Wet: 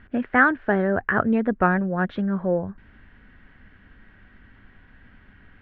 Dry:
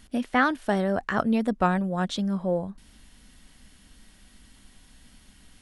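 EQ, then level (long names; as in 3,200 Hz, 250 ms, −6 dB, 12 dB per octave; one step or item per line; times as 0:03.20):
low-pass filter 2,400 Hz 24 dB per octave
dynamic equaliser 1,600 Hz, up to −3 dB, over −36 dBFS, Q 0.74
graphic EQ with 15 bands 100 Hz +9 dB, 400 Hz +5 dB, 1,600 Hz +11 dB
+1.0 dB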